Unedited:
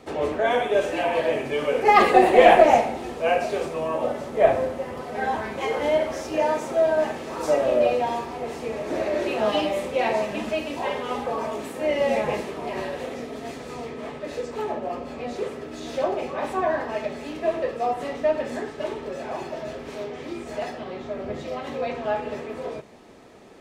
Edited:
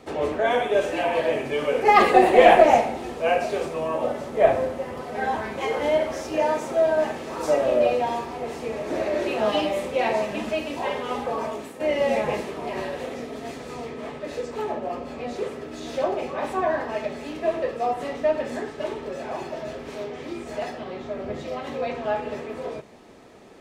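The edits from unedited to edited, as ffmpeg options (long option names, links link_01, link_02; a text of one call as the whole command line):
ffmpeg -i in.wav -filter_complex "[0:a]asplit=2[link_01][link_02];[link_01]atrim=end=11.8,asetpts=PTS-STARTPTS,afade=type=out:start_time=11.45:duration=0.35:silence=0.398107[link_03];[link_02]atrim=start=11.8,asetpts=PTS-STARTPTS,afade=type=in:duration=0.004:curve=hsin:silence=0.398107[link_04];[link_03][link_04]concat=n=2:v=0:a=1" out.wav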